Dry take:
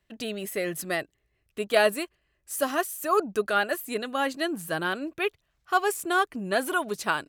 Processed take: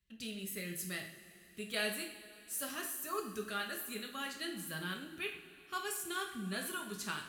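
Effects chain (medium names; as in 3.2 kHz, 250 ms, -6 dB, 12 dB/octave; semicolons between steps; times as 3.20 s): amplifier tone stack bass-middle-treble 6-0-2; two-slope reverb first 0.53 s, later 3.8 s, from -17 dB, DRR 1 dB; trim +6.5 dB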